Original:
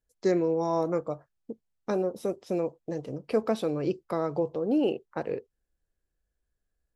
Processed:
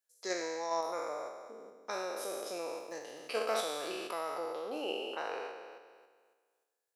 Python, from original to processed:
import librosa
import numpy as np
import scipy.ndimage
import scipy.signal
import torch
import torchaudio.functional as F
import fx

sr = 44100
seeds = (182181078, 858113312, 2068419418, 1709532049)

p1 = fx.spec_trails(x, sr, decay_s=1.66)
p2 = scipy.signal.sosfilt(scipy.signal.butter(2, 770.0, 'highpass', fs=sr, output='sos'), p1)
p3 = fx.high_shelf(p2, sr, hz=4000.0, db=7.0)
p4 = fx.level_steps(p3, sr, step_db=10)
p5 = p3 + (p4 * 10.0 ** (0.5 / 20.0))
p6 = fx.dmg_crackle(p5, sr, seeds[0], per_s=100.0, level_db=-41.0, at=(2.79, 3.9), fade=0.02)
y = p6 * 10.0 ** (-8.0 / 20.0)